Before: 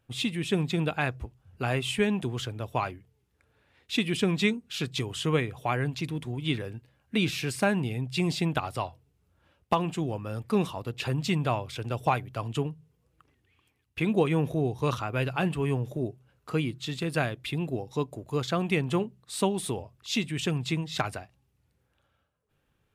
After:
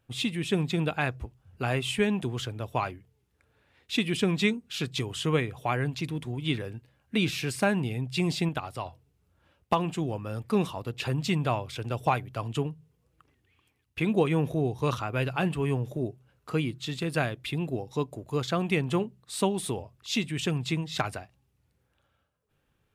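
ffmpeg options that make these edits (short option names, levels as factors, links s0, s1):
-filter_complex "[0:a]asplit=3[s0][s1][s2];[s0]atrim=end=8.492[s3];[s1]atrim=start=8.488:end=8.862,asetpts=PTS-STARTPTS,volume=0.631[s4];[s2]atrim=start=8.858[s5];[s3][s4]acrossfade=d=0.004:c1=hsin:c2=hsin[s6];[s6][s5]acrossfade=d=0.004:c1=hsin:c2=hsin"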